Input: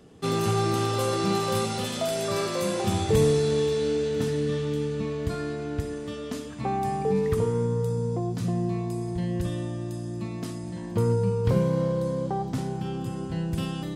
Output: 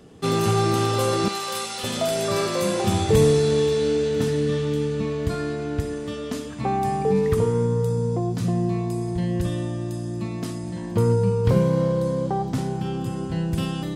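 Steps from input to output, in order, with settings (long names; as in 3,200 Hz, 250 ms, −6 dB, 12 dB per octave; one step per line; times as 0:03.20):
0:01.28–0:01.84: high-pass filter 1,400 Hz 6 dB per octave
level +4 dB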